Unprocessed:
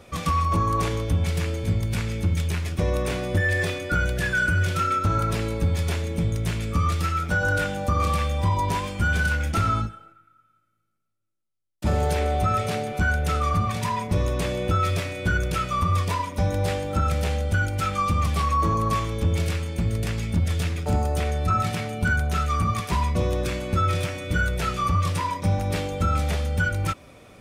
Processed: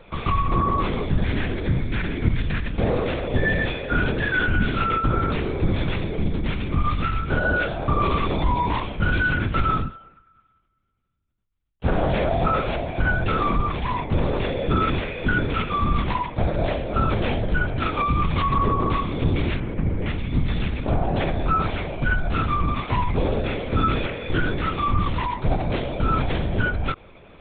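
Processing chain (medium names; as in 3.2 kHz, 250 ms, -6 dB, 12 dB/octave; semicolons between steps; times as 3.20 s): 1.11–2.68 s: peaking EQ 1.7 kHz +9 dB 0.3 oct; 19.59–20.07 s: low-pass 2.4 kHz 24 dB/octave; LPC vocoder at 8 kHz whisper; trim +1.5 dB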